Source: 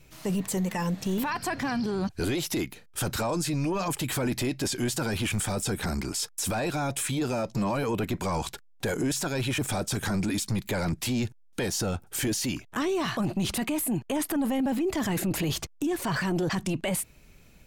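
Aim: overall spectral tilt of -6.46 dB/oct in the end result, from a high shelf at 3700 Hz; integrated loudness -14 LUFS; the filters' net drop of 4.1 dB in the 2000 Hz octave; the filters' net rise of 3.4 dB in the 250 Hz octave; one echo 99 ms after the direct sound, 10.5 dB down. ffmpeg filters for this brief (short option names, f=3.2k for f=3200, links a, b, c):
-af "equalizer=f=250:t=o:g=4.5,equalizer=f=2k:t=o:g=-3.5,highshelf=f=3.7k:g=-7.5,aecho=1:1:99:0.299,volume=13.5dB"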